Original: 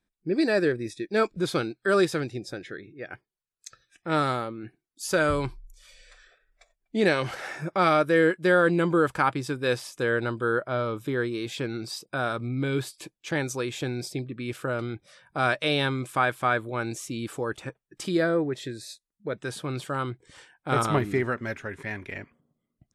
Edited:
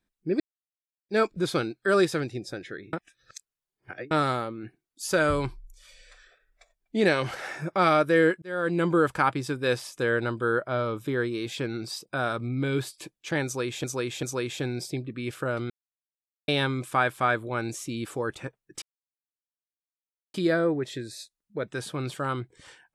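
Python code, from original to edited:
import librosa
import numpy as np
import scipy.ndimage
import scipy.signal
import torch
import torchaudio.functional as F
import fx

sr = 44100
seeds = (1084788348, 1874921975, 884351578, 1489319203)

y = fx.edit(x, sr, fx.silence(start_s=0.4, length_s=0.69),
    fx.reverse_span(start_s=2.93, length_s=1.18),
    fx.fade_in_span(start_s=8.42, length_s=0.45),
    fx.repeat(start_s=13.45, length_s=0.39, count=3),
    fx.silence(start_s=14.92, length_s=0.78),
    fx.insert_silence(at_s=18.04, length_s=1.52), tone=tone)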